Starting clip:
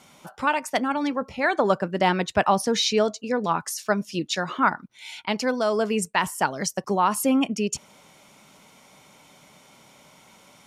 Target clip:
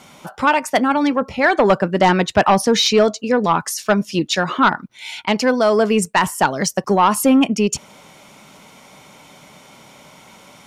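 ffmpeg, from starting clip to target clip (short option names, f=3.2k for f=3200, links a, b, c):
-af "aeval=exprs='0.501*sin(PI/2*1.78*val(0)/0.501)':c=same,equalizer=f=10k:t=o:w=2:g=-3"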